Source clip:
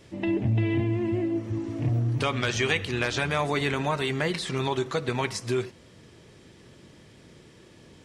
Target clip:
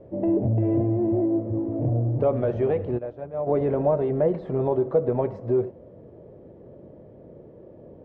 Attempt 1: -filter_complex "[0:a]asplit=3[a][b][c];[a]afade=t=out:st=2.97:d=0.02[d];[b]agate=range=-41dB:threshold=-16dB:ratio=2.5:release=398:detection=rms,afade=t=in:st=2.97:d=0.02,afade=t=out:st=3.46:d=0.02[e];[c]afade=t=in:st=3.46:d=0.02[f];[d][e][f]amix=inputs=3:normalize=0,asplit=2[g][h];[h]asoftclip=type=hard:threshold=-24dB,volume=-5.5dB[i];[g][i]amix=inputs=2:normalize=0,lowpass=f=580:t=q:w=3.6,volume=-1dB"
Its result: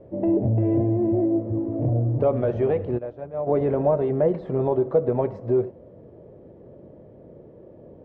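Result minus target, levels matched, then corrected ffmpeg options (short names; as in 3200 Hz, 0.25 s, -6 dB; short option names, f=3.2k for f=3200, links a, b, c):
hard clip: distortion -6 dB
-filter_complex "[0:a]asplit=3[a][b][c];[a]afade=t=out:st=2.97:d=0.02[d];[b]agate=range=-41dB:threshold=-16dB:ratio=2.5:release=398:detection=rms,afade=t=in:st=2.97:d=0.02,afade=t=out:st=3.46:d=0.02[e];[c]afade=t=in:st=3.46:d=0.02[f];[d][e][f]amix=inputs=3:normalize=0,asplit=2[g][h];[h]asoftclip=type=hard:threshold=-30.5dB,volume=-5.5dB[i];[g][i]amix=inputs=2:normalize=0,lowpass=f=580:t=q:w=3.6,volume=-1dB"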